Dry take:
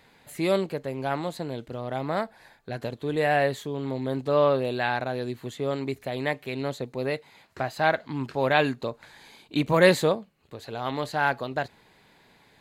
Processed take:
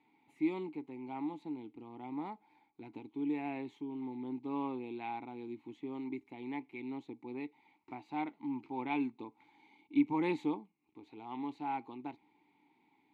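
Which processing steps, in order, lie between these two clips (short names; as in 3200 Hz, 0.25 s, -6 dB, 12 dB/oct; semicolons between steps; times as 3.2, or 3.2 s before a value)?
speed mistake 25 fps video run at 24 fps; vowel filter u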